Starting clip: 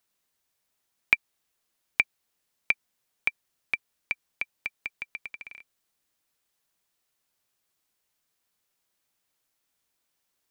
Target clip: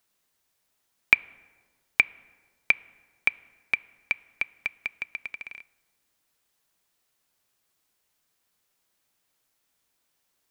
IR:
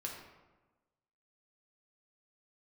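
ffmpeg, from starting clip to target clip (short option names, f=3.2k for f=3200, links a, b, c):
-filter_complex "[0:a]asplit=2[a][b];[1:a]atrim=start_sample=2205,asetrate=31752,aresample=44100,lowpass=3.3k[c];[b][c]afir=irnorm=-1:irlink=0,volume=-18dB[d];[a][d]amix=inputs=2:normalize=0,volume=3dB"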